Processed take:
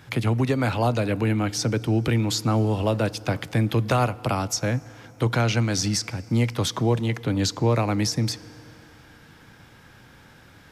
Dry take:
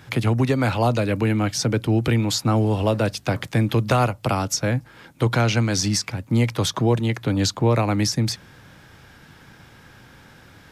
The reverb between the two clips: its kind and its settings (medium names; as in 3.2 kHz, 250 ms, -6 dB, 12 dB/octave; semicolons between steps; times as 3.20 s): FDN reverb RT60 3.4 s, high-frequency decay 0.65×, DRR 19.5 dB; trim -2.5 dB